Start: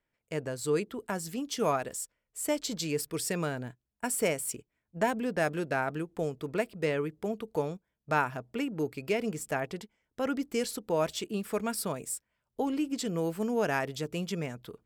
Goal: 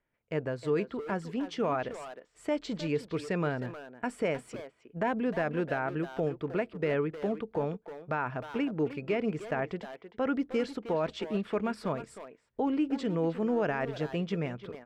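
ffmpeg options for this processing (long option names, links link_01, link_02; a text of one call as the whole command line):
ffmpeg -i in.wav -filter_complex "[0:a]lowpass=2500,alimiter=limit=-22.5dB:level=0:latency=1:release=28,asplit=2[link_01][link_02];[link_02]adelay=310,highpass=300,lowpass=3400,asoftclip=type=hard:threshold=-31.5dB,volume=-9dB[link_03];[link_01][link_03]amix=inputs=2:normalize=0,volume=2dB" out.wav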